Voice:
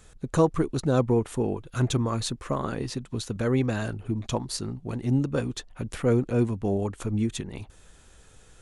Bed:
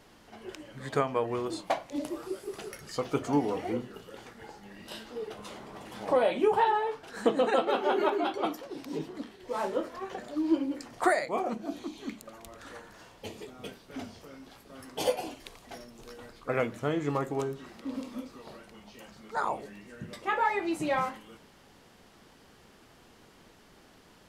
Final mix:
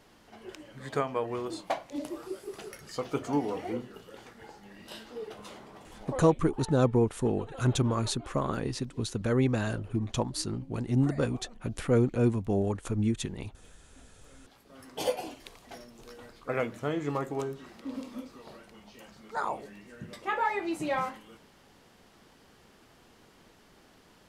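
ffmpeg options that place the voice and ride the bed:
ffmpeg -i stem1.wav -i stem2.wav -filter_complex "[0:a]adelay=5850,volume=-1.5dB[link_01];[1:a]volume=16.5dB,afade=type=out:start_time=5.47:duration=0.9:silence=0.125893,afade=type=in:start_time=14.07:duration=0.97:silence=0.11885[link_02];[link_01][link_02]amix=inputs=2:normalize=0" out.wav

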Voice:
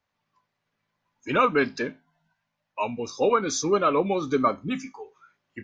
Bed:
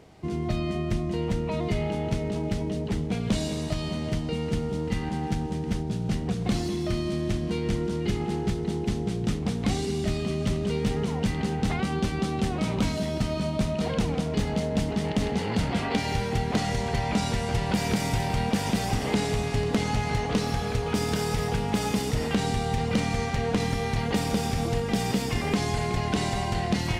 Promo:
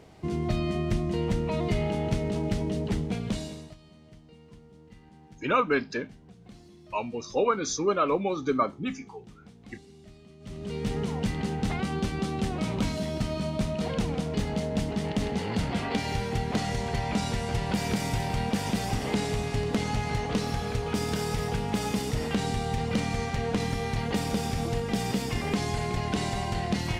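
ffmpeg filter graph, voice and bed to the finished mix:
ffmpeg -i stem1.wav -i stem2.wav -filter_complex "[0:a]adelay=4150,volume=-3dB[link_01];[1:a]volume=21dB,afade=type=out:start_time=2.91:duration=0.86:silence=0.0668344,afade=type=in:start_time=10.4:duration=0.57:silence=0.0891251[link_02];[link_01][link_02]amix=inputs=2:normalize=0" out.wav

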